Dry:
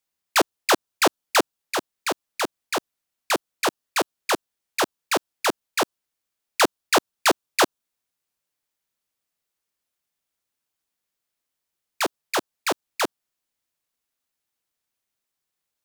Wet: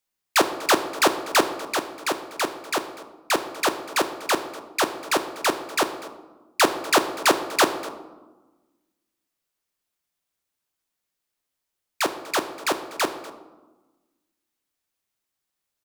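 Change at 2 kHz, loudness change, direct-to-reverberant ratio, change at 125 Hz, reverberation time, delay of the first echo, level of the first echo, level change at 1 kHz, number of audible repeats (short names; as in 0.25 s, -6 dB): +0.5 dB, +0.5 dB, 7.5 dB, +1.0 dB, 1.2 s, 0.244 s, -19.0 dB, +1.0 dB, 1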